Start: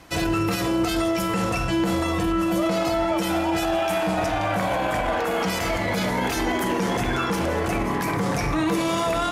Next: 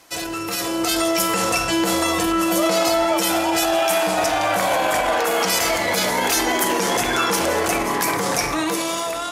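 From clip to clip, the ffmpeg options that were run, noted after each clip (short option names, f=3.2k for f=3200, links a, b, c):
-af "bass=f=250:g=-13,treble=f=4k:g=9,dynaudnorm=f=170:g=9:m=10dB,volume=-3dB"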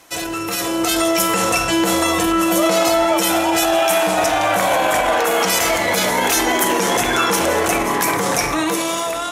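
-af "equalizer=f=4.7k:t=o:w=0.22:g=-6,volume=3dB"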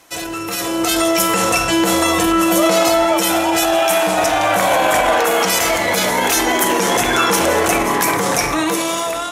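-af "dynaudnorm=f=460:g=3:m=11.5dB,volume=-1dB"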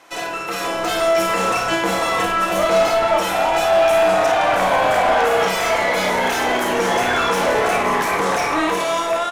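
-filter_complex "[0:a]asplit=2[a][b];[b]highpass=f=720:p=1,volume=19dB,asoftclip=type=tanh:threshold=-1.5dB[c];[a][c]amix=inputs=2:normalize=0,lowpass=f=1.5k:p=1,volume=-6dB,asplit=2[d][e];[e]aecho=0:1:32|53:0.473|0.501[f];[d][f]amix=inputs=2:normalize=0,volume=-7.5dB"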